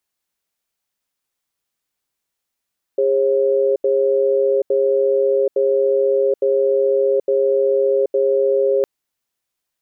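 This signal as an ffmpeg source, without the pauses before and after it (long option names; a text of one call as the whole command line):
ffmpeg -f lavfi -i "aevalsrc='0.158*(sin(2*PI*406*t)+sin(2*PI*541*t))*clip(min(mod(t,0.86),0.78-mod(t,0.86))/0.005,0,1)':duration=5.86:sample_rate=44100" out.wav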